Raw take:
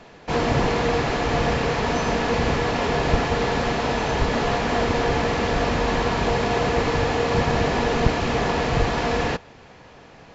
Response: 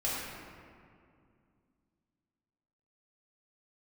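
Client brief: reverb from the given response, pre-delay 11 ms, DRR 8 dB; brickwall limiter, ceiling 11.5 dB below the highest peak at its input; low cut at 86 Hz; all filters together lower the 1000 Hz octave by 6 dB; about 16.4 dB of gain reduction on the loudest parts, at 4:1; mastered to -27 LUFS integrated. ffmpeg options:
-filter_complex "[0:a]highpass=86,equalizer=f=1k:t=o:g=-8.5,acompressor=threshold=-38dB:ratio=4,alimiter=level_in=12dB:limit=-24dB:level=0:latency=1,volume=-12dB,asplit=2[a][b];[1:a]atrim=start_sample=2205,adelay=11[c];[b][c]afir=irnorm=-1:irlink=0,volume=-15dB[d];[a][d]amix=inputs=2:normalize=0,volume=17dB"

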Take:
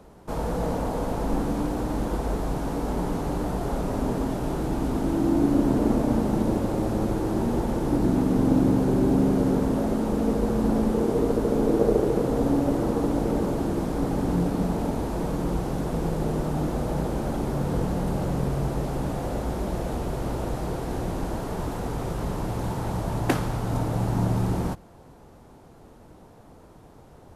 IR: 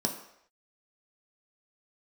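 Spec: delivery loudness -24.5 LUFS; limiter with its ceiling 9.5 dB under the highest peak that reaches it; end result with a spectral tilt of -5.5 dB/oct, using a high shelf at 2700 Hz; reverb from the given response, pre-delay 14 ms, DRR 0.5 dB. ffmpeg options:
-filter_complex "[0:a]highshelf=f=2.7k:g=6.5,alimiter=limit=-17dB:level=0:latency=1,asplit=2[a][b];[1:a]atrim=start_sample=2205,adelay=14[c];[b][c]afir=irnorm=-1:irlink=0,volume=-6.5dB[d];[a][d]amix=inputs=2:normalize=0,volume=-4dB"

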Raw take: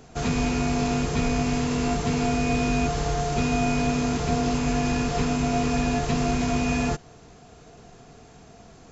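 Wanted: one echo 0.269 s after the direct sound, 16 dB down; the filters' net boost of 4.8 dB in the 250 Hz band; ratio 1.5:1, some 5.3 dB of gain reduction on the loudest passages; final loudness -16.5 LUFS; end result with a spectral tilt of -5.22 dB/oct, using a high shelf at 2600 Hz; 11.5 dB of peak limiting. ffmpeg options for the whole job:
-af "equalizer=f=250:t=o:g=5,highshelf=f=2.6k:g=3.5,acompressor=threshold=-32dB:ratio=1.5,alimiter=level_in=2dB:limit=-24dB:level=0:latency=1,volume=-2dB,aecho=1:1:269:0.158,volume=17.5dB"

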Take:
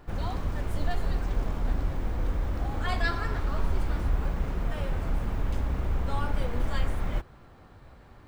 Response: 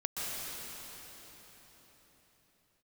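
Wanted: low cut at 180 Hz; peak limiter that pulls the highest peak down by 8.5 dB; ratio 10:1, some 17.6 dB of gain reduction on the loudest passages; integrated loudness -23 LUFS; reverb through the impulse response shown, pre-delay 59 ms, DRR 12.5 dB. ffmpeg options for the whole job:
-filter_complex "[0:a]highpass=180,acompressor=threshold=-44dB:ratio=10,alimiter=level_in=19.5dB:limit=-24dB:level=0:latency=1,volume=-19.5dB,asplit=2[a][b];[1:a]atrim=start_sample=2205,adelay=59[c];[b][c]afir=irnorm=-1:irlink=0,volume=-18dB[d];[a][d]amix=inputs=2:normalize=0,volume=29dB"

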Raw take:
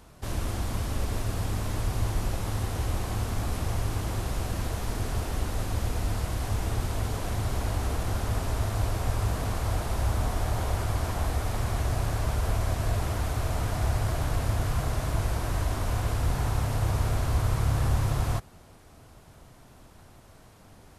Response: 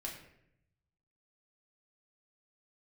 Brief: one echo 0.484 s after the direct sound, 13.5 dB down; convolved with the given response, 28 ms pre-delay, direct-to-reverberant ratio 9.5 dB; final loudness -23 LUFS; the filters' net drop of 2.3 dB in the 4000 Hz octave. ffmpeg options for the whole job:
-filter_complex "[0:a]equalizer=f=4k:t=o:g=-3,aecho=1:1:484:0.211,asplit=2[a][b];[1:a]atrim=start_sample=2205,adelay=28[c];[b][c]afir=irnorm=-1:irlink=0,volume=-8.5dB[d];[a][d]amix=inputs=2:normalize=0,volume=6dB"

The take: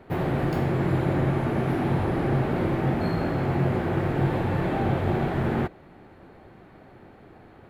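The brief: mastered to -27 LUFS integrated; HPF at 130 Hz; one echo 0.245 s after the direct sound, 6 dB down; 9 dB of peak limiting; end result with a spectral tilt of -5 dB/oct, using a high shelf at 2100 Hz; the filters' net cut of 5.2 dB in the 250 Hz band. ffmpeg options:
-af "highpass=130,equalizer=f=250:t=o:g=-7,highshelf=f=2.1k:g=-5,alimiter=level_in=1dB:limit=-24dB:level=0:latency=1,volume=-1dB,aecho=1:1:245:0.501,volume=6dB"

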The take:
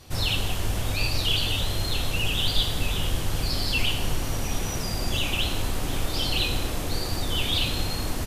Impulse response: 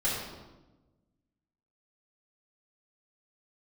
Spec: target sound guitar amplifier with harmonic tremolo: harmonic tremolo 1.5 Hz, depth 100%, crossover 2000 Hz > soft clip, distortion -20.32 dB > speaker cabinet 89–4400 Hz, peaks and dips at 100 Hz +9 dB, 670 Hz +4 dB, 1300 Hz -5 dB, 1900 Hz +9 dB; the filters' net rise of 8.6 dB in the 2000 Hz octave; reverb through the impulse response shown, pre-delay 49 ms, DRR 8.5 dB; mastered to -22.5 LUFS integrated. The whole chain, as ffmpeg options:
-filter_complex "[0:a]equalizer=f=2k:t=o:g=8.5,asplit=2[a][b];[1:a]atrim=start_sample=2205,adelay=49[c];[b][c]afir=irnorm=-1:irlink=0,volume=-17.5dB[d];[a][d]amix=inputs=2:normalize=0,acrossover=split=2000[e][f];[e]aeval=exprs='val(0)*(1-1/2+1/2*cos(2*PI*1.5*n/s))':c=same[g];[f]aeval=exprs='val(0)*(1-1/2-1/2*cos(2*PI*1.5*n/s))':c=same[h];[g][h]amix=inputs=2:normalize=0,asoftclip=threshold=-14.5dB,highpass=89,equalizer=f=100:t=q:w=4:g=9,equalizer=f=670:t=q:w=4:g=4,equalizer=f=1.3k:t=q:w=4:g=-5,equalizer=f=1.9k:t=q:w=4:g=9,lowpass=f=4.4k:w=0.5412,lowpass=f=4.4k:w=1.3066,volume=5.5dB"

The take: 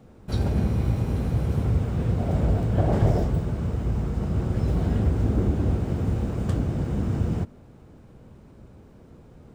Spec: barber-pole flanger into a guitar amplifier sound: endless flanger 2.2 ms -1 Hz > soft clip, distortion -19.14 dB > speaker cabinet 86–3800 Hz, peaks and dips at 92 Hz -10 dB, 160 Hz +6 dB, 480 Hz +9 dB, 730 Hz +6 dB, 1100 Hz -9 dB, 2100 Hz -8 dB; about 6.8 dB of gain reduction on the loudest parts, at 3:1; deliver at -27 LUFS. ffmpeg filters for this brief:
-filter_complex "[0:a]acompressor=threshold=-26dB:ratio=3,asplit=2[a][b];[b]adelay=2.2,afreqshift=-1[c];[a][c]amix=inputs=2:normalize=1,asoftclip=threshold=-24.5dB,highpass=86,equalizer=f=92:t=q:w=4:g=-10,equalizer=f=160:t=q:w=4:g=6,equalizer=f=480:t=q:w=4:g=9,equalizer=f=730:t=q:w=4:g=6,equalizer=f=1.1k:t=q:w=4:g=-9,equalizer=f=2.1k:t=q:w=4:g=-8,lowpass=f=3.8k:w=0.5412,lowpass=f=3.8k:w=1.3066,volume=8dB"

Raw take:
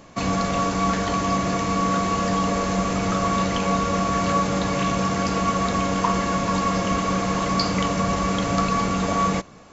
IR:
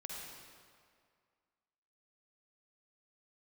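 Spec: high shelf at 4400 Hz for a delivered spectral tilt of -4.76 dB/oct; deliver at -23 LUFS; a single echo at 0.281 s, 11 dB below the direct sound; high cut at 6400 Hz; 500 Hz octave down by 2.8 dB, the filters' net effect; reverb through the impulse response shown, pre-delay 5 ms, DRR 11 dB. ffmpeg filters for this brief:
-filter_complex "[0:a]lowpass=6.4k,equalizer=f=500:t=o:g=-3.5,highshelf=f=4.4k:g=-5,aecho=1:1:281:0.282,asplit=2[a][b];[1:a]atrim=start_sample=2205,adelay=5[c];[b][c]afir=irnorm=-1:irlink=0,volume=-9.5dB[d];[a][d]amix=inputs=2:normalize=0,volume=1dB"

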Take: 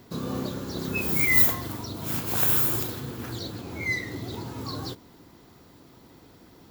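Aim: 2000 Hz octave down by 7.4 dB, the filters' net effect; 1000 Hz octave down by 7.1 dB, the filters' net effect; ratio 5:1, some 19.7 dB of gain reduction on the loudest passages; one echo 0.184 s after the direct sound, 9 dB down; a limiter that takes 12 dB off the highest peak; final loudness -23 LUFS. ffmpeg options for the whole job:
-af "equalizer=f=1k:t=o:g=-7.5,equalizer=f=2k:t=o:g=-6.5,acompressor=threshold=-37dB:ratio=5,alimiter=level_in=11.5dB:limit=-24dB:level=0:latency=1,volume=-11.5dB,aecho=1:1:184:0.355,volume=21dB"

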